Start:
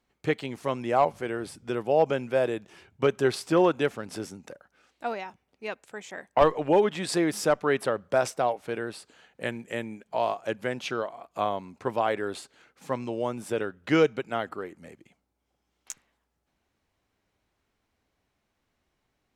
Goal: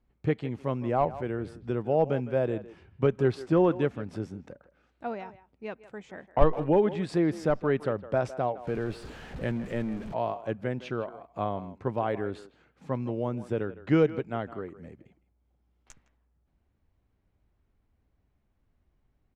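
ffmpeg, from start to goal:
ffmpeg -i in.wav -filter_complex "[0:a]asettb=1/sr,asplit=3[link_01][link_02][link_03];[link_01]atrim=end=8.674[link_04];[link_02]atrim=start=8.67:end=10.14,asetpts=PTS-STARTPTS,afade=type=in:duration=0.004:curve=qsin,afade=type=out:start_time=1.466:duration=0.004:curve=qsin,aeval=exprs='val(0)+0.5*0.0178*sgn(val(0))':channel_layout=same[link_05];[link_03]atrim=start=10.136[link_06];[link_04][link_05]acrossfade=duration=0.004:curve1=hsin:curve2=qsin[link_07];[link_07][link_06]acrossfade=duration=0.004:curve1=qsin:curve2=hsin,aemphasis=mode=reproduction:type=riaa,asplit=2[link_08][link_09];[link_09]adelay=160,highpass=300,lowpass=3400,asoftclip=type=hard:threshold=-11dB,volume=-15dB[link_10];[link_08][link_10]amix=inputs=2:normalize=0,volume=-5dB" out.wav

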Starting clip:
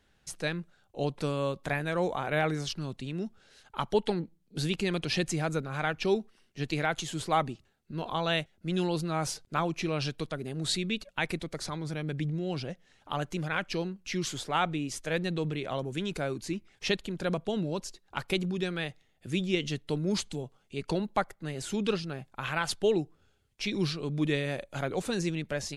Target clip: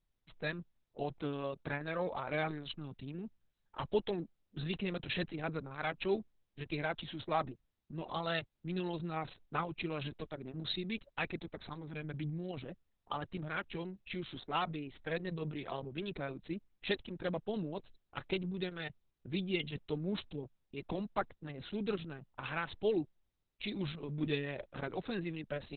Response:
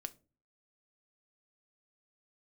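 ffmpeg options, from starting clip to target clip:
-af "anlmdn=0.1,volume=-6dB" -ar 48000 -c:a libopus -b:a 6k

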